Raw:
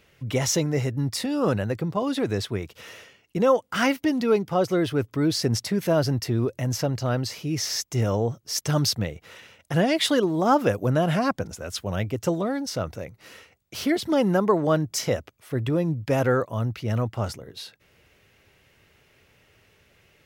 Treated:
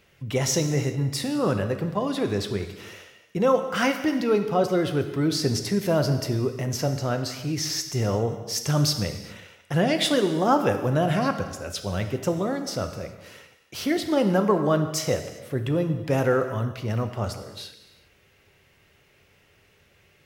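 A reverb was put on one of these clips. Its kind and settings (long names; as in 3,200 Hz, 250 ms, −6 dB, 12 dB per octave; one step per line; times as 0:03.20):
reverb whose tail is shaped and stops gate 430 ms falling, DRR 6.5 dB
level −1 dB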